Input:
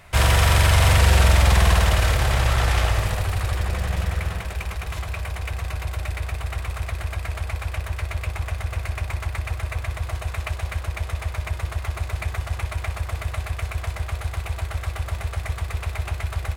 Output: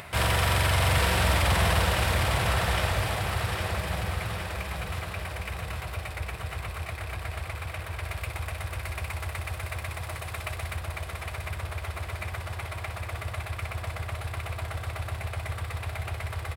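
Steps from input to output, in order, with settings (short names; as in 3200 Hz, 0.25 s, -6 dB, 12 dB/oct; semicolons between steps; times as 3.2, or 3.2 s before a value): HPF 94 Hz 12 dB/oct; bell 6500 Hz -6.5 dB 0.42 oct; upward compressor, threshold -29 dBFS; 8.03–10.75 high shelf 4800 Hz +6 dB; feedback echo 0.809 s, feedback 50%, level -5 dB; gain -4.5 dB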